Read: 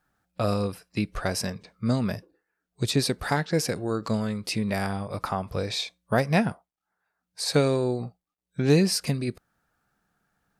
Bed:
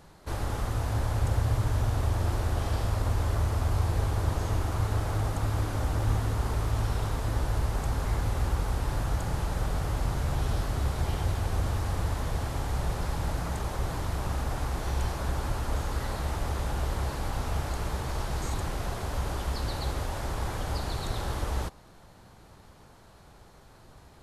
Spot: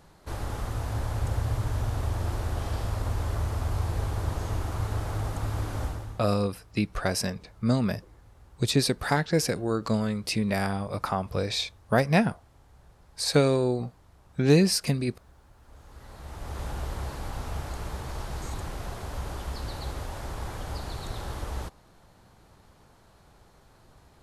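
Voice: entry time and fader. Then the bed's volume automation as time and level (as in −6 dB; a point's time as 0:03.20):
5.80 s, +0.5 dB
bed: 0:05.85 −2 dB
0:06.37 −26 dB
0:15.55 −26 dB
0:16.62 −3.5 dB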